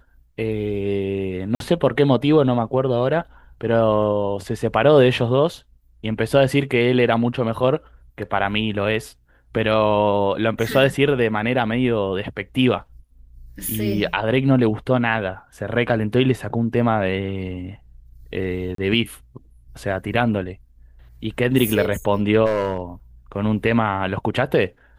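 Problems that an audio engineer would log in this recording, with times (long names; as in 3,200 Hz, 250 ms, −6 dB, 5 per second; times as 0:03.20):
0:01.55–0:01.60: drop-out 52 ms
0:18.75–0:18.78: drop-out 33 ms
0:22.45–0:22.81: clipping −15.5 dBFS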